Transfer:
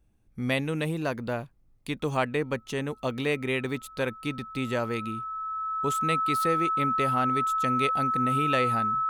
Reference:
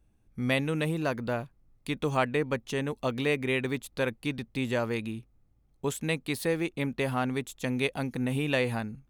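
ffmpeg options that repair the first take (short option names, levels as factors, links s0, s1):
-af "bandreject=f=1300:w=30"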